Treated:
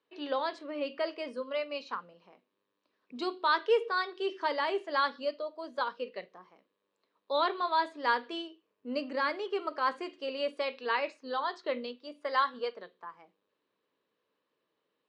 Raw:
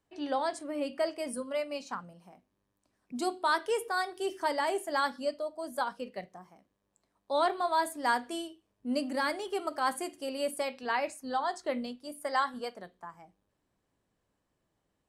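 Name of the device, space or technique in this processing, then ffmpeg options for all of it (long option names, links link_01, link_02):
phone earpiece: -filter_complex "[0:a]highpass=330,equalizer=frequency=460:width_type=q:width=4:gain=7,equalizer=frequency=740:width_type=q:width=4:gain=-9,equalizer=frequency=1100:width_type=q:width=4:gain=4,equalizer=frequency=2700:width_type=q:width=4:gain=4,equalizer=frequency=3900:width_type=q:width=4:gain=5,lowpass=frequency=4500:width=0.5412,lowpass=frequency=4500:width=1.3066,asettb=1/sr,asplit=3[link_01][link_02][link_03];[link_01]atrim=end=8.434[link_04];[link_02]atrim=start=8.43:end=10.07,asetpts=PTS-STARTPTS,afade=type=in:duration=0.004:curve=qsin,afade=type=out:start_time=1.636:duration=0.004:curve=qsin,equalizer=frequency=3600:width=2.5:gain=-5.5[link_05];[link_03]atrim=start=10.066[link_06];[link_04][link_05]acrossfade=duration=0.004:curve1=hsin:curve2=qsin[link_07];[link_07][link_06]acrossfade=duration=0.004:curve1=qsin:curve2=hsin"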